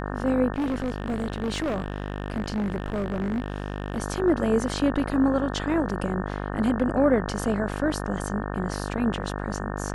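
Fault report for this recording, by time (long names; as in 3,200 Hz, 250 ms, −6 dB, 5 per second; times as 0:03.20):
mains buzz 50 Hz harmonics 36 −31 dBFS
0:00.52–0:04.00: clipping −23 dBFS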